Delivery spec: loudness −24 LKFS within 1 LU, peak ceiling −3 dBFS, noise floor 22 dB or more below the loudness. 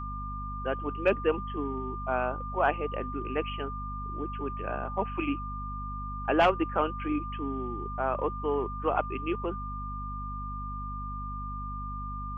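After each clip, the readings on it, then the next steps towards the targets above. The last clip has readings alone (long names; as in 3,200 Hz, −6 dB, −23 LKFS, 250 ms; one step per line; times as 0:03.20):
mains hum 50 Hz; hum harmonics up to 250 Hz; level of the hum −36 dBFS; interfering tone 1,200 Hz; level of the tone −37 dBFS; integrated loudness −32.0 LKFS; sample peak −11.5 dBFS; target loudness −24.0 LKFS
→ mains-hum notches 50/100/150/200/250 Hz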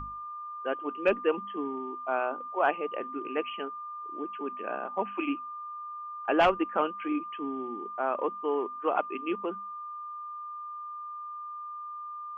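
mains hum none found; interfering tone 1,200 Hz; level of the tone −37 dBFS
→ notch filter 1,200 Hz, Q 30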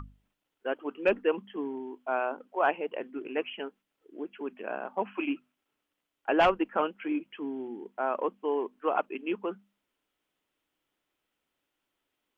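interfering tone none found; integrated loudness −32.0 LKFS; sample peak −12.0 dBFS; target loudness −24.0 LKFS
→ level +8 dB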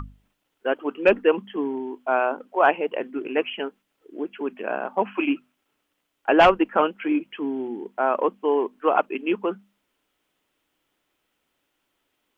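integrated loudness −24.0 LKFS; sample peak −4.0 dBFS; background noise floor −76 dBFS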